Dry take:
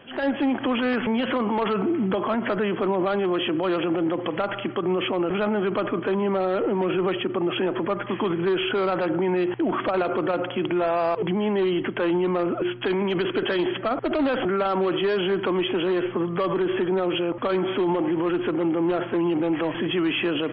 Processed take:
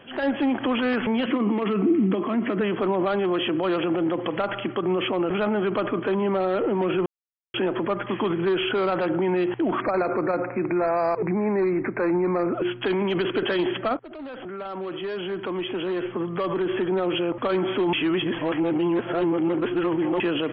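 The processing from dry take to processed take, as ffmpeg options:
ffmpeg -i in.wav -filter_complex "[0:a]asettb=1/sr,asplit=3[link_01][link_02][link_03];[link_01]atrim=end=1.264[link_04];[link_02]atrim=start=1.26:end=2.61,asetpts=PTS-STARTPTS,afade=type=in:duration=0.004:curve=qsin,afade=type=out:start_time=1.346:duration=0.004:curve=qsin,highpass=160,equalizer=frequency=200:width_type=q:width=4:gain=5,equalizer=frequency=300:width_type=q:width=4:gain=8,equalizer=frequency=570:width_type=q:width=4:gain=-8,equalizer=frequency=870:width_type=q:width=4:gain=-9,equalizer=frequency=1500:width_type=q:width=4:gain=-8,lowpass=frequency=3000:width=0.5412,lowpass=frequency=3000:width=1.3066[link_05];[link_03]atrim=start=2.606[link_06];[link_04][link_05]acrossfade=duration=0.004:curve1=hsin:curve2=qsin[link_07];[link_07][link_06]acrossfade=duration=0.004:curve1=qsin:curve2=hsin,asplit=3[link_08][link_09][link_10];[link_08]afade=type=out:start_time=9.8:duration=0.02[link_11];[link_09]asuperstop=centerf=3200:order=12:qfactor=2,afade=type=in:start_time=9.8:duration=0.02,afade=type=out:start_time=12.53:duration=0.02[link_12];[link_10]afade=type=in:start_time=12.53:duration=0.02[link_13];[link_11][link_12][link_13]amix=inputs=3:normalize=0,asplit=6[link_14][link_15][link_16][link_17][link_18][link_19];[link_14]atrim=end=7.06,asetpts=PTS-STARTPTS,afade=type=out:start_time=7.056:duration=0.004:curve=hsin[link_20];[link_15]atrim=start=7.06:end=7.54,asetpts=PTS-STARTPTS,volume=0[link_21];[link_16]atrim=start=7.54:end=13.97,asetpts=PTS-STARTPTS,afade=type=in:duration=0.004:curve=hsin,afade=type=out:start_time=6.426:duration=0.004:curve=hsin:silence=0.11885[link_22];[link_17]atrim=start=13.97:end=17.932,asetpts=PTS-STARTPTS,afade=type=in:duration=3.25:silence=0.11885[link_23];[link_18]atrim=start=17.928:end=20.202,asetpts=PTS-STARTPTS,areverse[link_24];[link_19]atrim=start=20.198[link_25];[link_20][link_21][link_22][link_23]concat=n=4:v=0:a=1[link_26];[link_26][link_24]acrossfade=duration=0.004:curve1=hsin:curve2=hsin[link_27];[link_27][link_25]acrossfade=duration=0.004:curve1=hsin:curve2=hsin" out.wav

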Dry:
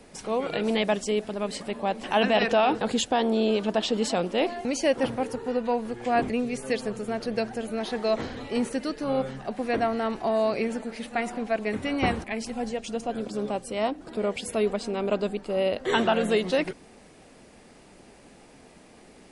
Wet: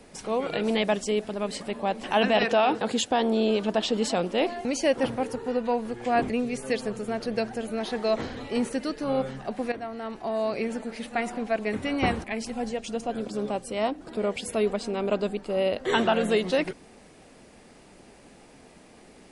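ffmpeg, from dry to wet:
ffmpeg -i in.wav -filter_complex "[0:a]asettb=1/sr,asplit=3[link_01][link_02][link_03];[link_01]atrim=end=2.434[link_04];[link_02]atrim=start=2.43:end=3.11,asetpts=PTS-STARTPTS,afade=type=in:duration=0.004:curve=qsin,afade=type=out:start_time=0.676:duration=0.004:curve=qsin,highpass=frequency=140:poles=1[link_05];[link_03]atrim=start=3.106[link_06];[link_04][link_05]acrossfade=duration=0.004:curve1=hsin:curve2=qsin[link_07];[link_07][link_06]acrossfade=duration=0.004:curve1=qsin:curve2=hsin,asplit=2[link_08][link_09];[link_08]atrim=end=9.72,asetpts=PTS-STARTPTS,afade=type=out:start_time=9.716:duration=0.004:curve=hsin:silence=0.223872[link_10];[link_09]atrim=start=9.72,asetpts=PTS-STARTPTS,afade=type=in:duration=1.18:silence=0.223872[link_11];[link_10][link_11]concat=n=2:v=0:a=1" out.wav

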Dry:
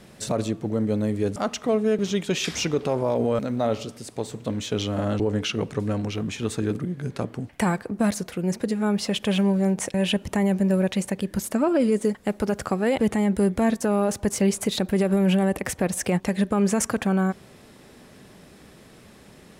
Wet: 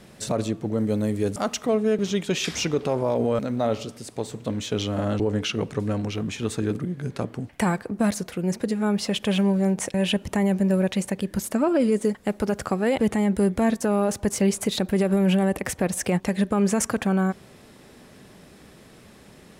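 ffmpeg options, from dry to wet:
ffmpeg -i in.wav -filter_complex "[0:a]asettb=1/sr,asplit=3[link_01][link_02][link_03];[link_01]atrim=end=0.784[link_04];[link_02]atrim=start=0.78:end=1.66,asetpts=PTS-STARTPTS,afade=type=in:duration=0.004:curve=qsin,afade=type=out:start_time=0.876:duration=0.004:curve=qsin,highshelf=frequency=7500:gain=9[link_05];[link_03]atrim=start=1.656[link_06];[link_04][link_05]acrossfade=duration=0.004:curve1=hsin:curve2=qsin[link_07];[link_07][link_06]acrossfade=duration=0.004:curve1=qsin:curve2=hsin" out.wav

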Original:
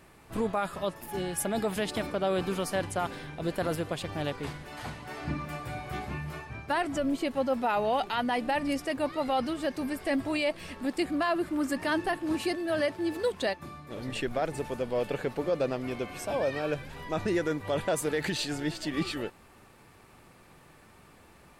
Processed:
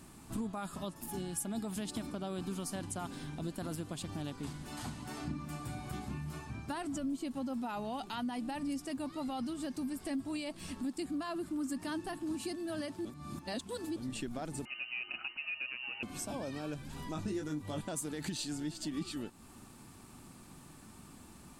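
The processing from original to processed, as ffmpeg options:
ffmpeg -i in.wav -filter_complex "[0:a]asettb=1/sr,asplit=3[link_01][link_02][link_03];[link_01]atrim=end=14.654[link_04];[link_02]atrim=start=14.65:end=16.03,asetpts=PTS-STARTPTS,afade=type=in:duration=0.004:curve=qsin,afade=type=out:start_time=1.376:duration=0.004:curve=qsin,lowpass=frequency=2600:width_type=q:width=0.5098,lowpass=frequency=2600:width_type=q:width=0.6013,lowpass=frequency=2600:width_type=q:width=0.9,lowpass=frequency=2600:width_type=q:width=2.563,afreqshift=-3000[link_05];[link_03]atrim=start=16.026[link_06];[link_04][link_05]acrossfade=duration=0.004:curve1=hsin:curve2=qsin[link_07];[link_07][link_06]acrossfade=duration=0.004:curve1=qsin:curve2=hsin,asettb=1/sr,asplit=3[link_08][link_09][link_10];[link_08]atrim=end=17.134[link_11];[link_09]atrim=start=17.13:end=17.81,asetpts=PTS-STARTPTS,afade=type=in:duration=0.004:curve=qsin,afade=type=out:start_time=0.676:duration=0.004:curve=qsin,asplit=2[link_12][link_13];[link_13]adelay=20,volume=-4dB[link_14];[link_12][link_14]amix=inputs=2:normalize=0,atrim=end_sample=29988[link_15];[link_10]atrim=start=17.806[link_16];[link_11][link_15]acrossfade=duration=0.004:curve1=hsin:curve2=qsin[link_17];[link_17][link_16]acrossfade=duration=0.004:curve1=qsin:curve2=hsin,asplit=3[link_18][link_19][link_20];[link_18]atrim=end=13.052[link_21];[link_19]atrim=start=13.048:end=13.962,asetpts=PTS-STARTPTS,areverse[link_22];[link_20]atrim=start=13.958[link_23];[link_21][link_22]acrossfade=duration=0.004:curve1=hsin:curve2=hsin[link_24];[link_24][link_23]acrossfade=duration=0.004:curve1=hsin:curve2=hsin,equalizer=frequency=250:width_type=o:width=1:gain=8,equalizer=frequency=500:width_type=o:width=1:gain=-10,equalizer=frequency=2000:width_type=o:width=1:gain=-8,equalizer=frequency=8000:width_type=o:width=1:gain=7,acompressor=threshold=-42dB:ratio=2.5,volume=1.5dB" out.wav

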